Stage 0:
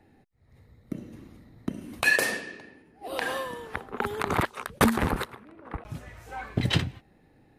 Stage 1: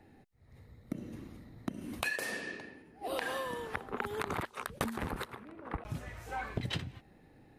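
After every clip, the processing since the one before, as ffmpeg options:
ffmpeg -i in.wav -af "acompressor=threshold=-32dB:ratio=10" out.wav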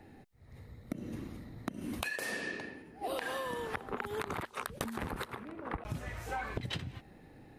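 ffmpeg -i in.wav -af "acompressor=threshold=-38dB:ratio=6,volume=4.5dB" out.wav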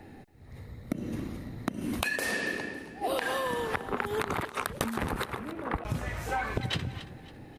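ffmpeg -i in.wav -af "aecho=1:1:276|552|828:0.188|0.0659|0.0231,volume=6.5dB" out.wav

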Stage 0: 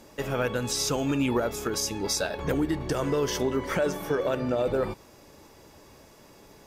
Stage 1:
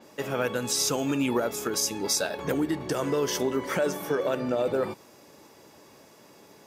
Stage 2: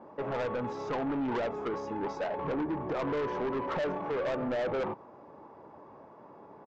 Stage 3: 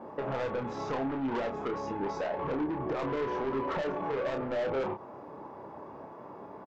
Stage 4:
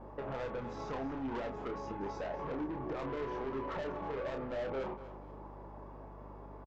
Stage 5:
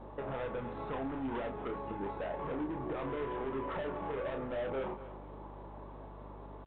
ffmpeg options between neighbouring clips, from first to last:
ffmpeg -i in.wav -af "highpass=150,adynamicequalizer=threshold=0.00891:dfrequency=6000:dqfactor=0.7:tfrequency=6000:tqfactor=0.7:attack=5:release=100:ratio=0.375:range=2.5:mode=boostabove:tftype=highshelf" out.wav
ffmpeg -i in.wav -af "lowpass=frequency=1000:width_type=q:width=2.1,aresample=16000,asoftclip=type=tanh:threshold=-28.5dB,aresample=44100" out.wav
ffmpeg -i in.wav -filter_complex "[0:a]acompressor=threshold=-37dB:ratio=6,asplit=2[link_01][link_02];[link_02]adelay=30,volume=-5.5dB[link_03];[link_01][link_03]amix=inputs=2:normalize=0,volume=5dB" out.wav
ffmpeg -i in.wav -af "aeval=exprs='val(0)+0.00501*(sin(2*PI*50*n/s)+sin(2*PI*2*50*n/s)/2+sin(2*PI*3*50*n/s)/3+sin(2*PI*4*50*n/s)/4+sin(2*PI*5*50*n/s)/5)':channel_layout=same,aecho=1:1:240|480|720:0.188|0.064|0.0218,volume=-6.5dB" out.wav
ffmpeg -i in.wav -af "volume=1dB" -ar 8000 -c:a pcm_alaw out.wav

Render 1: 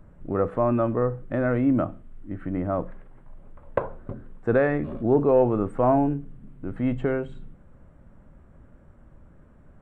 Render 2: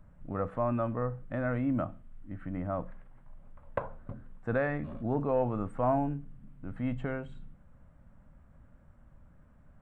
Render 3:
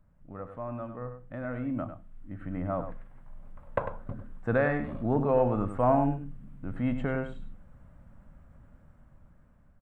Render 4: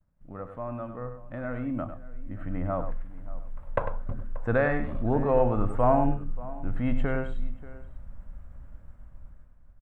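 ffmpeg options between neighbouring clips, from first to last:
ffmpeg -i in.wav -af "equalizer=frequency=380:width=2.1:gain=-10.5,volume=-5.5dB" out.wav
ffmpeg -i in.wav -filter_complex "[0:a]dynaudnorm=framelen=880:gausssize=5:maxgain=12dB,asplit=2[link_01][link_02];[link_02]adelay=99.13,volume=-9dB,highshelf=frequency=4000:gain=-2.23[link_03];[link_01][link_03]amix=inputs=2:normalize=0,volume=-8dB" out.wav
ffmpeg -i in.wav -filter_complex "[0:a]agate=range=-33dB:threshold=-54dB:ratio=3:detection=peak,asubboost=boost=3.5:cutoff=76,asplit=2[link_01][link_02];[link_02]adelay=583.1,volume=-18dB,highshelf=frequency=4000:gain=-13.1[link_03];[link_01][link_03]amix=inputs=2:normalize=0,volume=2dB" out.wav

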